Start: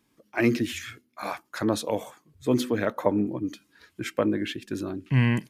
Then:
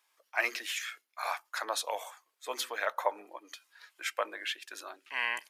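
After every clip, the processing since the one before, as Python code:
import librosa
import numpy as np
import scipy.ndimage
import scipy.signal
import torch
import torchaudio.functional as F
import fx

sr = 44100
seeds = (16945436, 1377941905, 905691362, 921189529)

y = scipy.signal.sosfilt(scipy.signal.butter(4, 710.0, 'highpass', fs=sr, output='sos'), x)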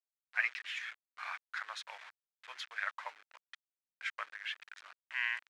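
y = fx.delta_hold(x, sr, step_db=-37.5)
y = fx.ladder_bandpass(y, sr, hz=2100.0, resonance_pct=35)
y = y * 10.0 ** (7.0 / 20.0)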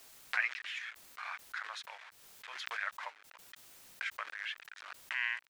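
y = fx.pre_swell(x, sr, db_per_s=44.0)
y = y * 10.0 ** (-1.0 / 20.0)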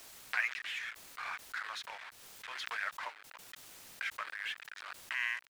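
y = fx.law_mismatch(x, sr, coded='mu')
y = fx.doppler_dist(y, sr, depth_ms=0.18)
y = y * 10.0 ** (-1.5 / 20.0)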